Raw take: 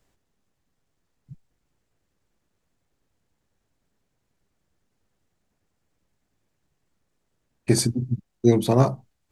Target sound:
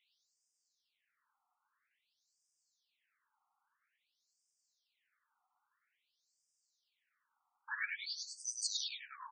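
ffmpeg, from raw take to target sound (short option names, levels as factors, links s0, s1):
-filter_complex "[0:a]asplit=8[s0][s1][s2][s3][s4][s5][s6][s7];[s1]adelay=102,afreqshift=-30,volume=0.596[s8];[s2]adelay=204,afreqshift=-60,volume=0.32[s9];[s3]adelay=306,afreqshift=-90,volume=0.174[s10];[s4]adelay=408,afreqshift=-120,volume=0.0933[s11];[s5]adelay=510,afreqshift=-150,volume=0.0507[s12];[s6]adelay=612,afreqshift=-180,volume=0.0272[s13];[s7]adelay=714,afreqshift=-210,volume=0.0148[s14];[s0][s8][s9][s10][s11][s12][s13][s14]amix=inputs=8:normalize=0,afftfilt=real='re*between(b*sr/1024,990*pow(6800/990,0.5+0.5*sin(2*PI*0.5*pts/sr))/1.41,990*pow(6800/990,0.5+0.5*sin(2*PI*0.5*pts/sr))*1.41)':imag='im*between(b*sr/1024,990*pow(6800/990,0.5+0.5*sin(2*PI*0.5*pts/sr))/1.41,990*pow(6800/990,0.5+0.5*sin(2*PI*0.5*pts/sr))*1.41)':win_size=1024:overlap=0.75,volume=1.5"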